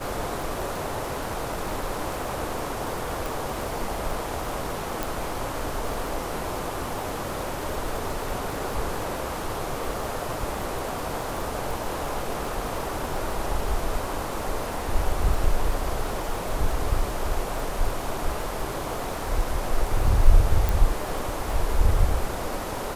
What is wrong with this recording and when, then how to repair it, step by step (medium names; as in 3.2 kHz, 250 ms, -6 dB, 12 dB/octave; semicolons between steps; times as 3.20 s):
crackle 47 per s -30 dBFS
3.26 s: pop
5.03 s: pop
20.69 s: pop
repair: de-click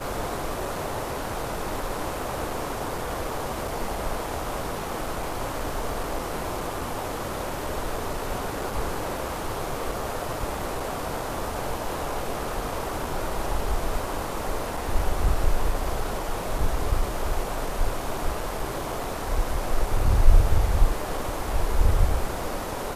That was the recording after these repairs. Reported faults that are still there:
3.26 s: pop
5.03 s: pop